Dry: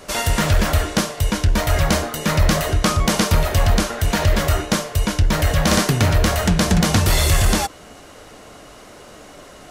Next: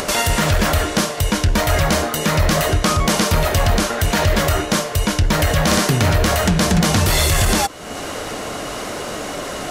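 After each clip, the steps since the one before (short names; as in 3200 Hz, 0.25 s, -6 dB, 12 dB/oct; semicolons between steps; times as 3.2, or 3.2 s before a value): low shelf 73 Hz -7 dB; upward compressor, threshold -20 dBFS; limiter -11.5 dBFS, peak gain reduction 5 dB; gain +4.5 dB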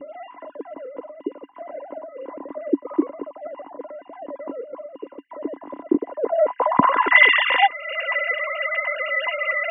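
sine-wave speech; low-pass sweep 310 Hz -> 2300 Hz, 6–7.3; small resonant body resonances 280/1000/2000/2800 Hz, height 18 dB, ringing for 55 ms; gain -9.5 dB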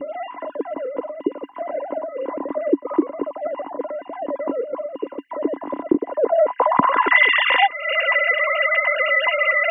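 compressor 2.5:1, threshold -24 dBFS, peak gain reduction 10.5 dB; gain +8 dB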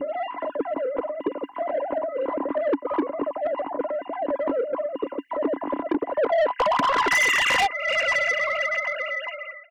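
ending faded out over 2.15 s; soft clip -18.5 dBFS, distortion -8 dB; gain +1.5 dB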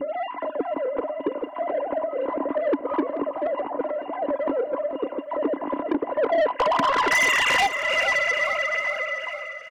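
feedback echo 0.433 s, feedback 52%, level -12 dB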